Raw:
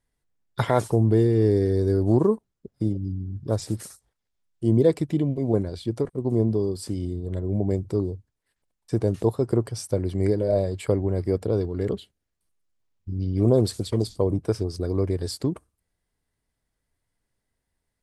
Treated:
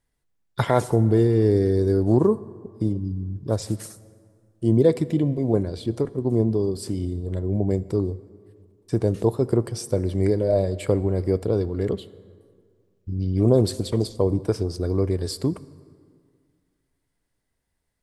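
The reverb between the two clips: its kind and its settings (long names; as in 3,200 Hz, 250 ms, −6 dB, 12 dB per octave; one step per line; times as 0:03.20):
dense smooth reverb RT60 2.1 s, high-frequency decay 0.6×, DRR 16.5 dB
level +1.5 dB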